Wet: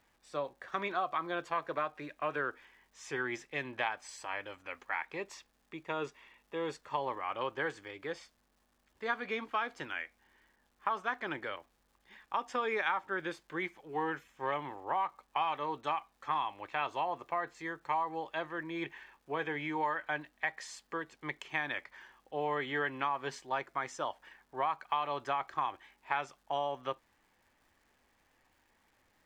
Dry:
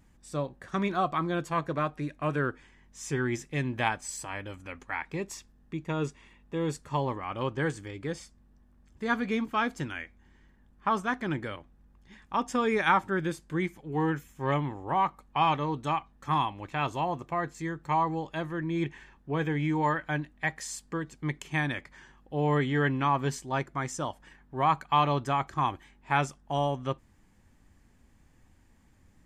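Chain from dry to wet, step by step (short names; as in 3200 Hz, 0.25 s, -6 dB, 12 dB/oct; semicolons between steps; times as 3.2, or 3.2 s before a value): three-band isolator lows -19 dB, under 410 Hz, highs -17 dB, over 4800 Hz; compressor, threshold -29 dBFS, peak gain reduction 10 dB; crackle 510/s -63 dBFS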